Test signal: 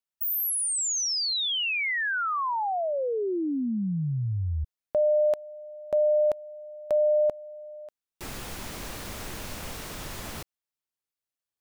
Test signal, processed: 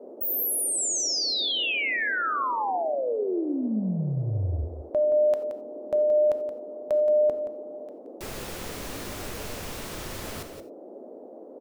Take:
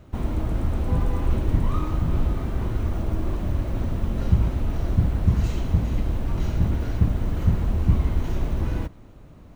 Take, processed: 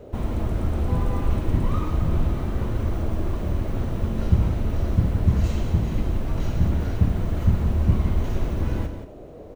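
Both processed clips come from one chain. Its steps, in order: band noise 250–640 Hz -44 dBFS; on a send: delay 174 ms -9.5 dB; on the sum: gated-style reverb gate 110 ms flat, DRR 11 dB

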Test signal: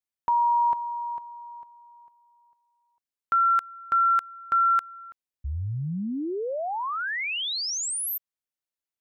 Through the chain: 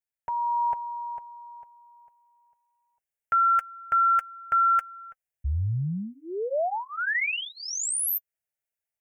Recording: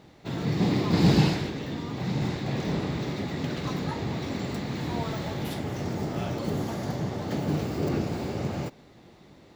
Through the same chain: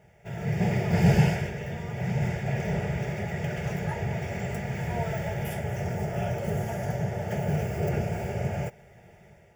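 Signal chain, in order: level rider gain up to 5 dB; static phaser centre 1.1 kHz, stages 6; comb of notches 260 Hz

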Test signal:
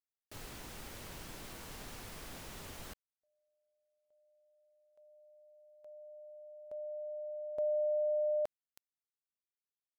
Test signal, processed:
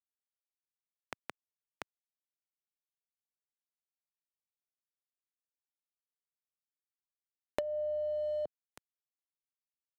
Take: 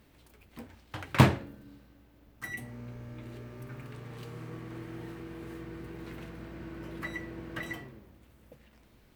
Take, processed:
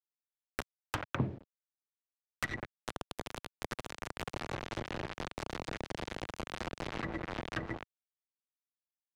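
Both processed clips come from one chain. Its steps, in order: bit crusher 6-bit; low-pass that closes with the level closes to 450 Hz, closed at -30.5 dBFS; three bands compressed up and down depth 100%; trim +4 dB

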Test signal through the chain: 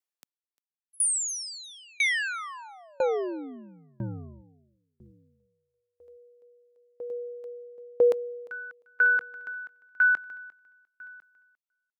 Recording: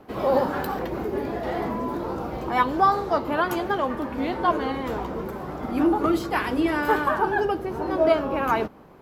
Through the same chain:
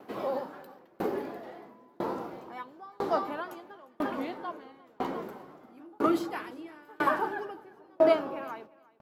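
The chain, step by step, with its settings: high-pass 200 Hz 12 dB/octave; feedback delay 350 ms, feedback 47%, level -11 dB; sawtooth tremolo in dB decaying 1 Hz, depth 34 dB

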